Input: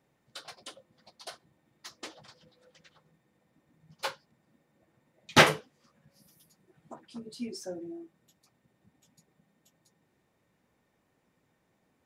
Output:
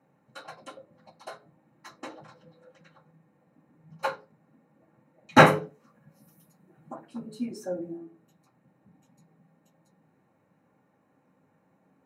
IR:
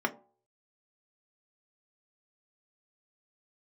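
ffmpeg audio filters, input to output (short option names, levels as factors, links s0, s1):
-filter_complex "[0:a]asettb=1/sr,asplit=3[s0][s1][s2];[s0]atrim=end=5.454[s3];[s1]atrim=start=5.45:end=7.98,asetpts=PTS-STARTPTS,afade=t=in:d=0.004:c=qsin,afade=t=out:st=2.526:d=0.004:c=qsin,highshelf=f=11000:g=11[s4];[s2]atrim=start=7.976[s5];[s3][s4]acrossfade=d=0.004:c1=hsin:c2=qsin[s6];[s6][s5]acrossfade=d=0.004:c1=qsin:c2=hsin[s7];[1:a]atrim=start_sample=2205,afade=t=out:st=0.18:d=0.01,atrim=end_sample=8379,asetrate=31752,aresample=44100[s8];[s7][s8]afir=irnorm=-1:irlink=0,volume=0.501"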